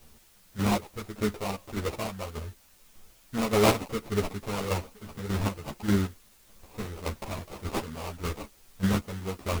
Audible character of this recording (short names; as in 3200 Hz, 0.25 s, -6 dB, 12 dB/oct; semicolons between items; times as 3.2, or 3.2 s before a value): aliases and images of a low sample rate 1700 Hz, jitter 20%; chopped level 1.7 Hz, depth 65%, duty 30%; a quantiser's noise floor 10-bit, dither triangular; a shimmering, thickened sound